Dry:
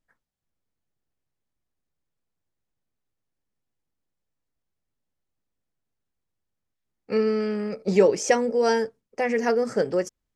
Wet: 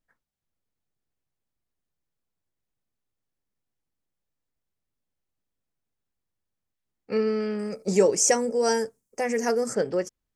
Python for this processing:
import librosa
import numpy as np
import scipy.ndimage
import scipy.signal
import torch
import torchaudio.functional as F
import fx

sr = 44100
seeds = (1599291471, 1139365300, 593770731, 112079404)

y = fx.high_shelf_res(x, sr, hz=5300.0, db=12.5, q=1.5, at=(7.59, 9.75))
y = F.gain(torch.from_numpy(y), -2.0).numpy()